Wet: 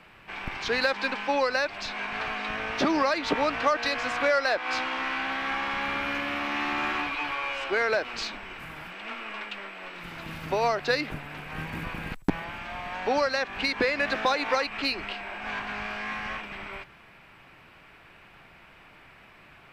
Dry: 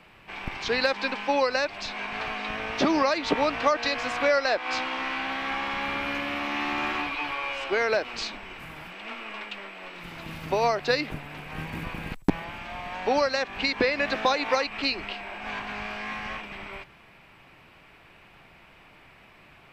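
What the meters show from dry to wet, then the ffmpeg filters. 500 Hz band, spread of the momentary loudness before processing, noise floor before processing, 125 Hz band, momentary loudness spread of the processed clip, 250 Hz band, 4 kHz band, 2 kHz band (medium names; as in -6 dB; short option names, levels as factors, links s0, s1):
-1.5 dB, 14 LU, -54 dBFS, -1.5 dB, 13 LU, -1.5 dB, -1.5 dB, +0.5 dB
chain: -filter_complex "[0:a]equalizer=f=1500:t=o:w=0.66:g=4,asplit=2[s0][s1];[s1]asoftclip=type=tanh:threshold=0.0531,volume=0.422[s2];[s0][s2]amix=inputs=2:normalize=0,volume=0.668"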